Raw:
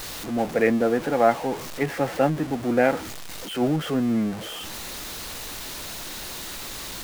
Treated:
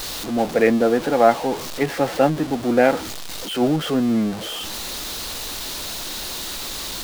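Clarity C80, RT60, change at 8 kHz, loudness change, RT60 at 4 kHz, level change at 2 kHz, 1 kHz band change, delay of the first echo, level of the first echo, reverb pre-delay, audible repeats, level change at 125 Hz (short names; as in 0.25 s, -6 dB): none, none, +5.5 dB, +4.0 dB, none, +3.0 dB, +4.0 dB, none, none, none, none, +1.5 dB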